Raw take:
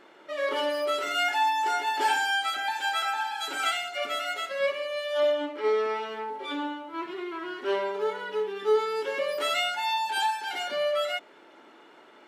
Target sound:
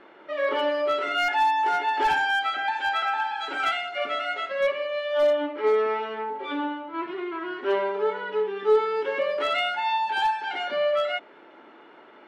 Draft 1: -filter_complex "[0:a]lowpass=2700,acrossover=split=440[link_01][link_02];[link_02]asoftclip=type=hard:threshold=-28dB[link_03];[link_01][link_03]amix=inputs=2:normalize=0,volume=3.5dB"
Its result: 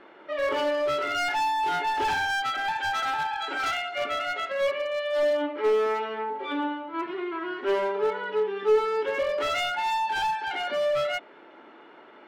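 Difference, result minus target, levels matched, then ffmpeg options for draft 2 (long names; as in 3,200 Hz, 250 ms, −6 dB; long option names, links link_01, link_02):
hard clipping: distortion +13 dB
-filter_complex "[0:a]lowpass=2700,acrossover=split=440[link_01][link_02];[link_02]asoftclip=type=hard:threshold=-21.5dB[link_03];[link_01][link_03]amix=inputs=2:normalize=0,volume=3.5dB"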